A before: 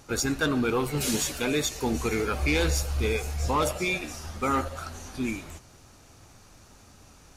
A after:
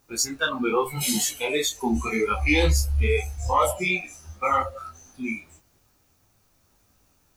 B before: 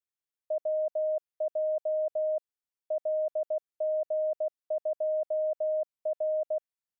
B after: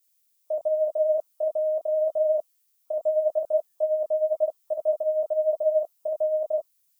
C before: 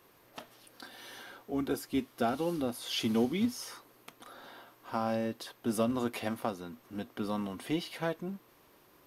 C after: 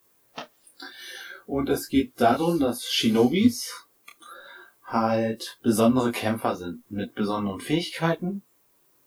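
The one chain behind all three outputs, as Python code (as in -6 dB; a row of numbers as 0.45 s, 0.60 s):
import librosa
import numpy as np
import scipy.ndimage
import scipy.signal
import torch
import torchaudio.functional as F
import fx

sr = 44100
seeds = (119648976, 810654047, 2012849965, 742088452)

y = fx.dmg_noise_colour(x, sr, seeds[0], colour='violet', level_db=-56.0)
y = fx.noise_reduce_blind(y, sr, reduce_db=18)
y = fx.detune_double(y, sr, cents=30)
y = y * 10.0 ** (-26 / 20.0) / np.sqrt(np.mean(np.square(y)))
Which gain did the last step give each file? +9.0 dB, +10.0 dB, +13.5 dB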